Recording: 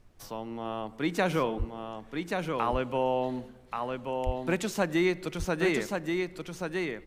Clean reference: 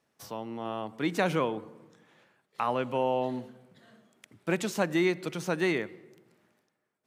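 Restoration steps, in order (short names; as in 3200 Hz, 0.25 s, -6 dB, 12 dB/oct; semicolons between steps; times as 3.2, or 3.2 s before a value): de-plosive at 1.58/4.25; expander -40 dBFS, range -21 dB; inverse comb 1.131 s -4.5 dB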